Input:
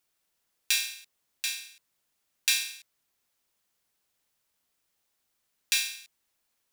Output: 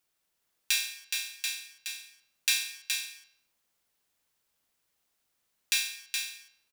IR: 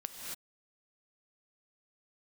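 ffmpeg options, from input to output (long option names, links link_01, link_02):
-filter_complex "[0:a]aecho=1:1:420:0.562,asplit=2[link_01][link_02];[1:a]atrim=start_sample=2205,lowpass=4400[link_03];[link_02][link_03]afir=irnorm=-1:irlink=0,volume=-18dB[link_04];[link_01][link_04]amix=inputs=2:normalize=0,volume=-1.5dB"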